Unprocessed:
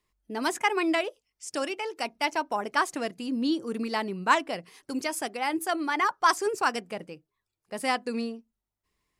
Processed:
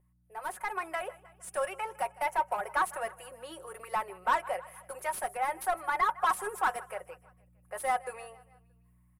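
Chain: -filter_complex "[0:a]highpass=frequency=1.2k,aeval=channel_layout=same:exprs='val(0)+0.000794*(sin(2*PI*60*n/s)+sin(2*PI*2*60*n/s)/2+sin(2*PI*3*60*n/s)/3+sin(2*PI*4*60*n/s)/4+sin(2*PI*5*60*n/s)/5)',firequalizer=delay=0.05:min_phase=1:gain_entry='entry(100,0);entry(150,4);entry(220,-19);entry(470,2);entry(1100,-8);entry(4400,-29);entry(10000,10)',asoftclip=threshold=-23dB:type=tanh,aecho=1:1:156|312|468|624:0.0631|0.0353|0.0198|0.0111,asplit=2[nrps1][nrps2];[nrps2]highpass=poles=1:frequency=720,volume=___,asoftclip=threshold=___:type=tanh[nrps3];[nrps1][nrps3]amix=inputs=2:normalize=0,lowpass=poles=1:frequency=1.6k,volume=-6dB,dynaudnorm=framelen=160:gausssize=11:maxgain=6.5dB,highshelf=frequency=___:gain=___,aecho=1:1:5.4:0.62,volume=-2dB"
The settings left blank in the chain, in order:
17dB, -22.5dB, 6k, -5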